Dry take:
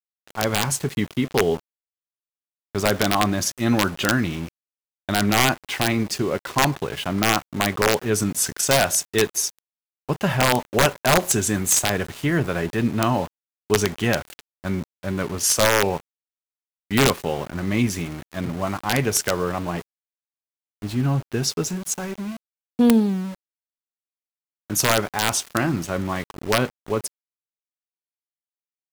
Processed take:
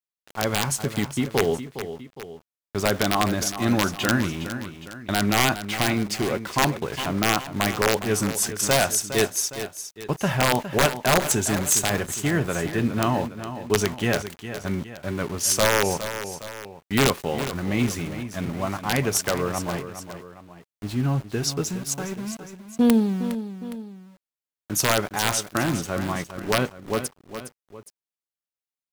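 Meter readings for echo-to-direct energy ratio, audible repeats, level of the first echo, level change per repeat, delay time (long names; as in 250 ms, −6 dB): −10.0 dB, 2, −11.0 dB, −6.0 dB, 411 ms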